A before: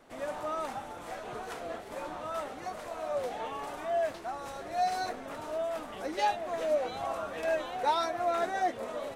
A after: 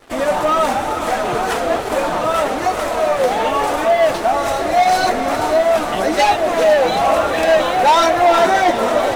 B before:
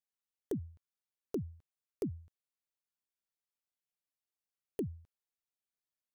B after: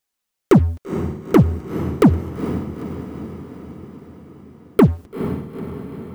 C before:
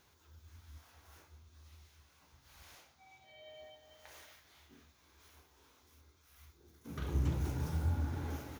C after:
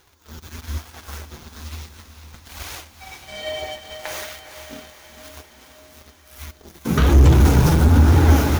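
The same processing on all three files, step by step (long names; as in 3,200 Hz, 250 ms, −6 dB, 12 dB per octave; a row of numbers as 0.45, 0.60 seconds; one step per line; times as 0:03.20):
leveller curve on the samples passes 3
flanger 1.1 Hz, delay 2.1 ms, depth 4.1 ms, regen −30%
feedback delay with all-pass diffusion 457 ms, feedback 61%, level −10 dB
normalise the peak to −3 dBFS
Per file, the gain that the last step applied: +13.0, +24.0, +19.0 decibels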